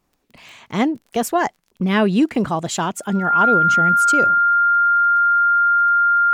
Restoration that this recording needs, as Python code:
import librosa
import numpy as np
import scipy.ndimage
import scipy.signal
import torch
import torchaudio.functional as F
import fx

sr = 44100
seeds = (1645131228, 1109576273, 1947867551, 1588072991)

y = fx.fix_declick_ar(x, sr, threshold=6.5)
y = fx.notch(y, sr, hz=1400.0, q=30.0)